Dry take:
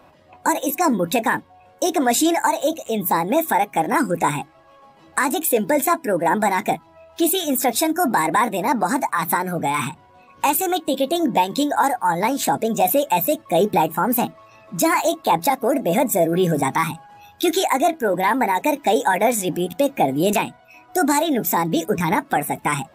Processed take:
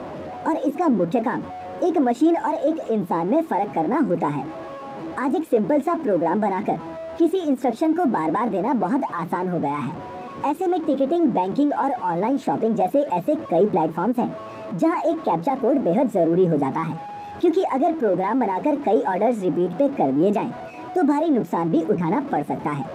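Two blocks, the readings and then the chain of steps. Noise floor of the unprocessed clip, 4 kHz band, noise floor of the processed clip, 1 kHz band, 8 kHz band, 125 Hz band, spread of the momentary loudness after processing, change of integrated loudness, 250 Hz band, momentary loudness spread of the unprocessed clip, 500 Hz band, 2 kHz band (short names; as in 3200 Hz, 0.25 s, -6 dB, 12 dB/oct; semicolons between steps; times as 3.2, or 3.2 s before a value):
-51 dBFS, -15.5 dB, -36 dBFS, -4.0 dB, under -20 dB, -0.5 dB, 9 LU, -1.5 dB, +1.5 dB, 5 LU, 0.0 dB, -10.5 dB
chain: zero-crossing step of -23 dBFS; band-pass 330 Hz, Q 0.77; ending taper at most 480 dB/s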